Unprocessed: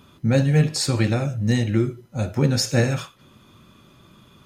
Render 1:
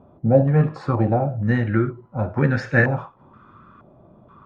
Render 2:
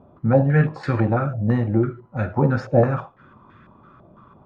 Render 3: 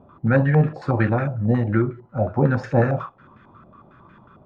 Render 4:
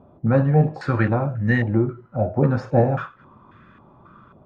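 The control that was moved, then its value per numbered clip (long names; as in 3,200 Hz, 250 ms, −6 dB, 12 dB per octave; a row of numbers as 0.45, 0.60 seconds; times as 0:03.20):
low-pass on a step sequencer, speed: 2.1, 6, 11, 3.7 Hertz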